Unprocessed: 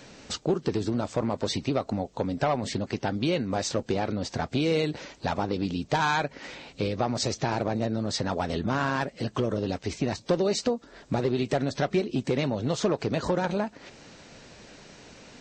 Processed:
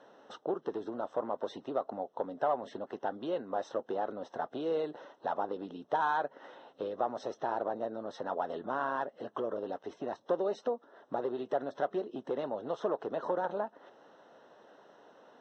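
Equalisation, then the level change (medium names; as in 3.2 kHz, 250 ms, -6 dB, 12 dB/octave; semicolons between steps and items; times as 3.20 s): boxcar filter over 19 samples; high-pass 560 Hz 12 dB/octave; distance through air 87 m; 0.0 dB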